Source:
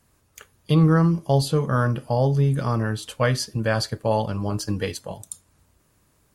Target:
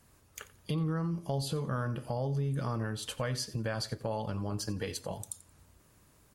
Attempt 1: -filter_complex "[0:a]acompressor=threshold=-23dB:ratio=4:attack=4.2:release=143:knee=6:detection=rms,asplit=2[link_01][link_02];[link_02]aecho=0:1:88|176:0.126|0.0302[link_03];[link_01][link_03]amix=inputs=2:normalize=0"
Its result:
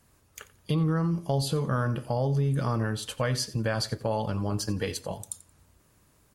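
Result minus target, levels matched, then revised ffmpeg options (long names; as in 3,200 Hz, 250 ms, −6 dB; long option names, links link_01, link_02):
downward compressor: peak gain reduction −6.5 dB
-filter_complex "[0:a]acompressor=threshold=-31.5dB:ratio=4:attack=4.2:release=143:knee=6:detection=rms,asplit=2[link_01][link_02];[link_02]aecho=0:1:88|176:0.126|0.0302[link_03];[link_01][link_03]amix=inputs=2:normalize=0"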